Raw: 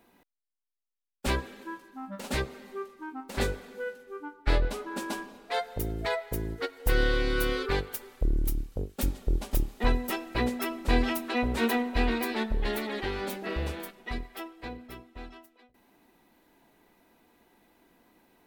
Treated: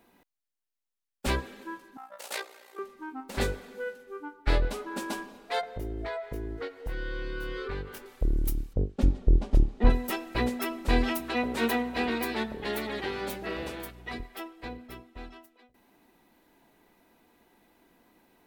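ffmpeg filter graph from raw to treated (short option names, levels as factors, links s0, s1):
-filter_complex "[0:a]asettb=1/sr,asplit=3[s0][s1][s2];[s0]atrim=end=1.974[s3];[s1]atrim=start=1.97:end=2.79,asetpts=PTS-STARTPTS,afade=t=in:d=0.004:c=qsin,afade=t=out:st=0.816:d=0.004:c=qsin,highpass=f=490:w=0.5412,highpass=f=490:w=1.3066,highshelf=f=6000:g=7,tremolo=f=59:d=0.667[s4];[s2]atrim=start=2.786[s5];[s3][s4]acrossfade=d=0.004:c1=hsin:c2=qsin[s6];[s6][s5]acrossfade=d=0.004:c1=qsin:c2=hsin,asettb=1/sr,asplit=3[s7][s8][s9];[s7]atrim=end=5.614[s10];[s8]atrim=start=5.61:end=8.06,asetpts=PTS-STARTPTS,afade=t=in:d=0.004:c=qsin,afade=t=out:st=2.446:d=0.004:c=qsin,lowpass=f=2300:p=1,asplit=2[s11][s12];[s12]adelay=21,volume=0.75[s13];[s11][s13]amix=inputs=2:normalize=0,atrim=end_sample=108045,acompressor=threshold=0.0251:ratio=4:attack=3.2:release=140:knee=1:detection=peak[s14];[s9]atrim=start=8.056[s15];[s10][s14]acrossfade=d=0.004:c1=hsin:c2=qsin[s16];[s16][s15]acrossfade=d=0.004:c1=qsin:c2=hsin,asettb=1/sr,asplit=3[s17][s18][s19];[s17]atrim=end=8.734[s20];[s18]atrim=start=8.73:end=9.9,asetpts=PTS-STARTPTS,afade=t=in:d=0.004:c=qsin,afade=t=out:st=1.166:d=0.004:c=qsin,lowpass=5500,tiltshelf=f=760:g=6.5[s21];[s19]atrim=start=9.896[s22];[s20][s21]acrossfade=d=0.004:c1=hsin:c2=qsin[s23];[s23][s22]acrossfade=d=0.004:c1=qsin:c2=hsin,asettb=1/sr,asplit=3[s24][s25][s26];[s24]atrim=end=11.204[s27];[s25]atrim=start=11.2:end=14.2,asetpts=PTS-STARTPTS,afade=t=in:d=0.004:c=qsin,afade=t=out:st=2.996:d=0.004:c=qsin,highpass=180,aeval=exprs='val(0)+0.00398*(sin(2*PI*60*n/s)+sin(2*PI*2*60*n/s)/2+sin(2*PI*3*60*n/s)/3+sin(2*PI*4*60*n/s)/4+sin(2*PI*5*60*n/s)/5)':c=same[s28];[s26]atrim=start=14.196[s29];[s27][s28]acrossfade=d=0.004:c1=hsin:c2=qsin[s30];[s30][s29]acrossfade=d=0.004:c1=qsin:c2=hsin"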